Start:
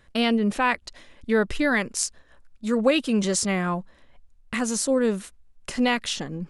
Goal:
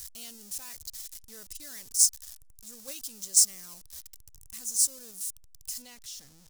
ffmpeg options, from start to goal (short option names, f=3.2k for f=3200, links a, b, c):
-af "aeval=exprs='val(0)+0.5*0.075*sgn(val(0))':c=same,asetnsamples=n=441:p=0,asendcmd='5.82 highshelf g -2.5',highshelf=f=5.4k:g=10.5,agate=range=-11dB:threshold=-14dB:ratio=16:detection=peak,firequalizer=gain_entry='entry(110,0);entry(160,-12);entry(2200,-8);entry(5400,11)':delay=0.05:min_phase=1,volume=-13dB"